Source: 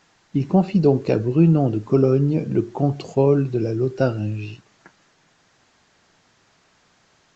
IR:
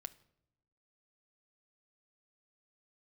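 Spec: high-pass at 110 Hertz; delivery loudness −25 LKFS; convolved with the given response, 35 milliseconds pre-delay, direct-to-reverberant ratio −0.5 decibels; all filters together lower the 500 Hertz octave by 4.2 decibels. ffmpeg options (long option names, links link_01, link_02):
-filter_complex "[0:a]highpass=110,equalizer=frequency=500:width_type=o:gain=-5.5,asplit=2[link_01][link_02];[1:a]atrim=start_sample=2205,adelay=35[link_03];[link_02][link_03]afir=irnorm=-1:irlink=0,volume=5dB[link_04];[link_01][link_04]amix=inputs=2:normalize=0,volume=-7dB"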